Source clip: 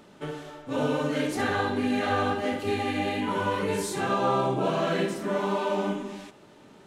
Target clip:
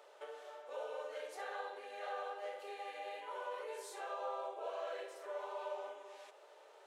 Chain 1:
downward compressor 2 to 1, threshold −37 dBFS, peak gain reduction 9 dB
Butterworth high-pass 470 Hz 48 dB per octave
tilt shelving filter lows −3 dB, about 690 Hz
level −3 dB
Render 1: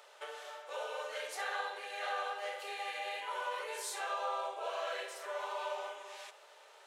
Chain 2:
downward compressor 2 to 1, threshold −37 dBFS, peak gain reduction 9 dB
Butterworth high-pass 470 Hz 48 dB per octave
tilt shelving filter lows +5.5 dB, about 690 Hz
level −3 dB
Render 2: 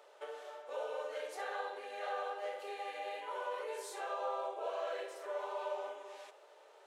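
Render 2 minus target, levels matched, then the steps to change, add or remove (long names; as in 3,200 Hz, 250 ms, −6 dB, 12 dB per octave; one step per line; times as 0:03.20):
downward compressor: peak gain reduction −3.5 dB
change: downward compressor 2 to 1, threshold −44 dBFS, peak gain reduction 12.5 dB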